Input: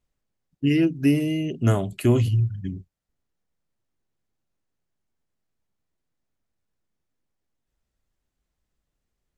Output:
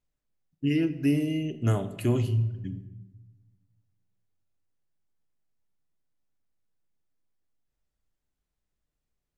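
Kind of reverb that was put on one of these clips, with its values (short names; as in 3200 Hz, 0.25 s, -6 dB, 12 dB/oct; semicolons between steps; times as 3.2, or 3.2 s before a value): shoebox room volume 540 m³, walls mixed, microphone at 0.41 m; gain -6 dB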